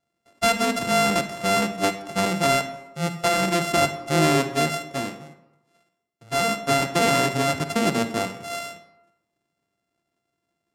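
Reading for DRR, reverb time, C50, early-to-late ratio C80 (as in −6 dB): 9.0 dB, 0.95 s, 10.5 dB, 12.5 dB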